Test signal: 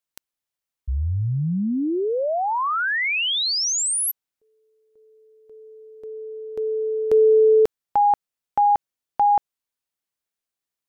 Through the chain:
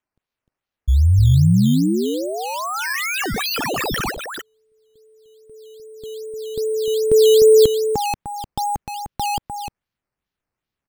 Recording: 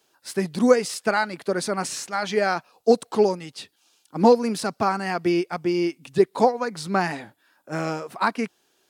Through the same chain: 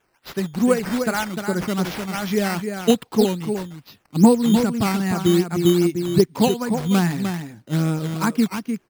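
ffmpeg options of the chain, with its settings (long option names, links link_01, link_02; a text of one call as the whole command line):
ffmpeg -i in.wav -af "aecho=1:1:302:0.447,asubboost=boost=9:cutoff=230,acrusher=samples=9:mix=1:aa=0.000001:lfo=1:lforange=9:lforate=2.5,volume=-1dB" out.wav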